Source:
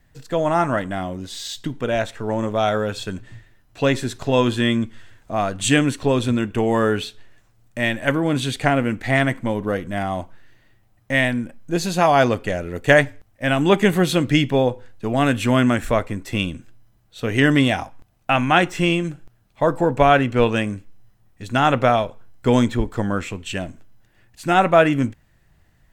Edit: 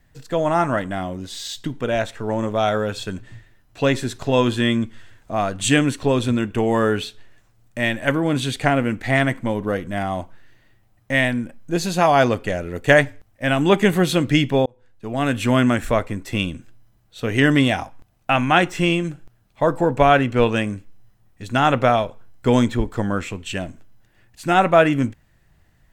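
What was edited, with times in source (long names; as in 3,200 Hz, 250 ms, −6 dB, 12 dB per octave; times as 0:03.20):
0:14.66–0:15.48: fade in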